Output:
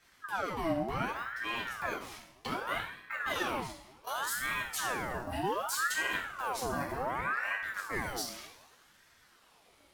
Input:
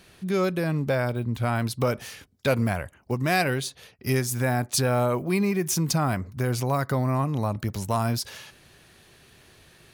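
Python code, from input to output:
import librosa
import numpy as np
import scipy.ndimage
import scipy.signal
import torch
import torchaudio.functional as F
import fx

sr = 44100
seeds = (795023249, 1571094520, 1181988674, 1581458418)

y = fx.level_steps(x, sr, step_db=15)
y = fx.rev_double_slope(y, sr, seeds[0], early_s=0.55, late_s=1.8, knee_db=-18, drr_db=-5.0)
y = fx.ring_lfo(y, sr, carrier_hz=1100.0, swing_pct=60, hz=0.66)
y = y * librosa.db_to_amplitude(-6.5)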